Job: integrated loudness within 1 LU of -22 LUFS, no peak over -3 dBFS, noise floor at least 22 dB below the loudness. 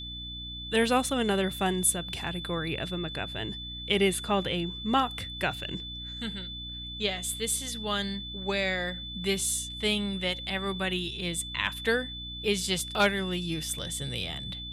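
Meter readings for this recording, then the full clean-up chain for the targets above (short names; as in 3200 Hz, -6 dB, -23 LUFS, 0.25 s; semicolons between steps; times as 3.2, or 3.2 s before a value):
hum 60 Hz; harmonics up to 300 Hz; hum level -41 dBFS; steady tone 3500 Hz; tone level -38 dBFS; loudness -29.5 LUFS; peak -11.5 dBFS; loudness target -22.0 LUFS
-> de-hum 60 Hz, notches 5; notch 3500 Hz, Q 30; gain +7.5 dB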